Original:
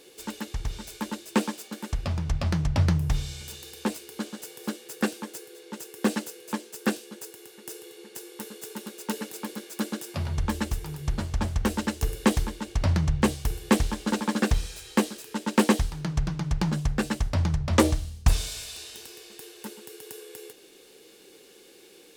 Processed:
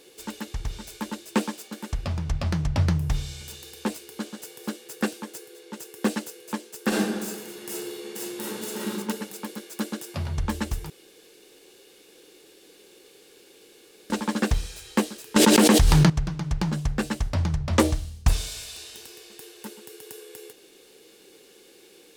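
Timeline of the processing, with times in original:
6.88–8.94 reverb throw, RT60 1.1 s, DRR -8 dB
10.9–14.1 room tone
15.36–16.1 fast leveller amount 100%

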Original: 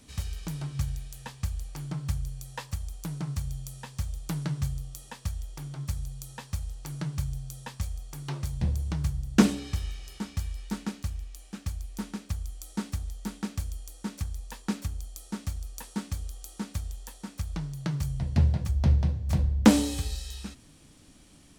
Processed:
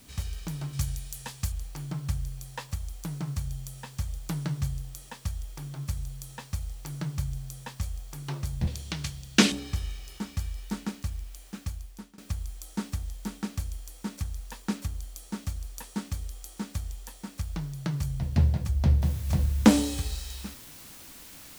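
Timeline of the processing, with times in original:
0.73–1.52 high shelf 4100 Hz +9.5 dB
8.67–9.52 weighting filter D
11.61–12.18 fade out, to -22.5 dB
19.02 noise floor step -59 dB -48 dB

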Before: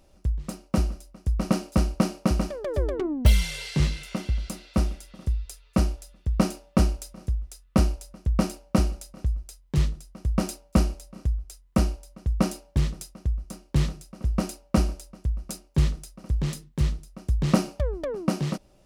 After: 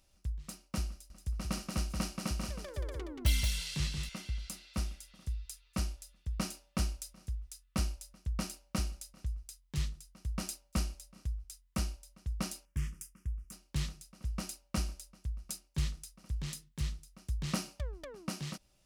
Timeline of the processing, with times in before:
0.92–4.09 echo 0.179 s -5 dB
12.65–13.52 fixed phaser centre 1700 Hz, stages 4
whole clip: passive tone stack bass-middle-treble 5-5-5; gain +2.5 dB

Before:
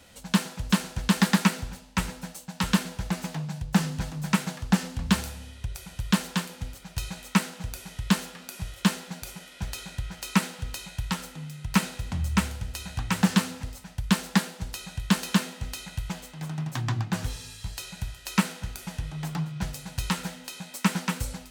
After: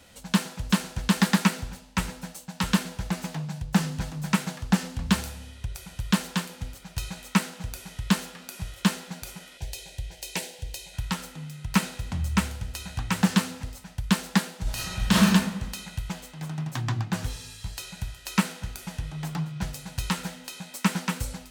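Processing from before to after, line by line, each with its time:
9.57–10.94 fixed phaser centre 510 Hz, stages 4
14.62–15.25 reverb throw, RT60 1.1 s, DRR -6.5 dB

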